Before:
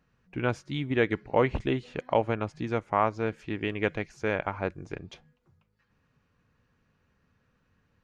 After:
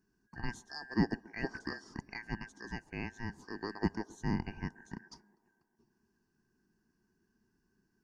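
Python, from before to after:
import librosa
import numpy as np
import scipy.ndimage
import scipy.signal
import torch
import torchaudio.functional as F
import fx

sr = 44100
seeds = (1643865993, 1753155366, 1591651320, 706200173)

y = fx.band_shuffle(x, sr, order='2143')
y = fx.curve_eq(y, sr, hz=(130.0, 200.0, 350.0, 560.0, 910.0, 2300.0, 5700.0), db=(0, 3, 3, -17, -7, -29, -4))
y = fx.echo_wet_bandpass(y, sr, ms=135, feedback_pct=71, hz=590.0, wet_db=-21.5)
y = y * 10.0 ** (3.5 / 20.0)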